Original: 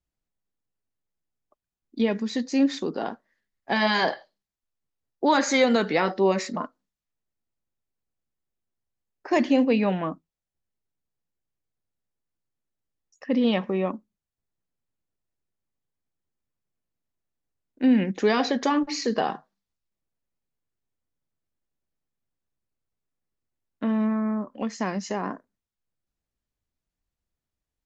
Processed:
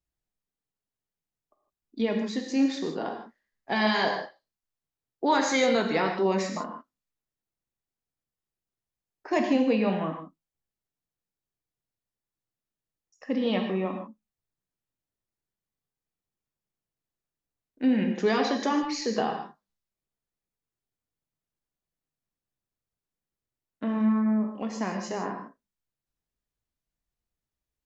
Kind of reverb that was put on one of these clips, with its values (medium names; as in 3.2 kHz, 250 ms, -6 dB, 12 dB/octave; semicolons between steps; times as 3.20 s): gated-style reverb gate 180 ms flat, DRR 3.5 dB; trim -4 dB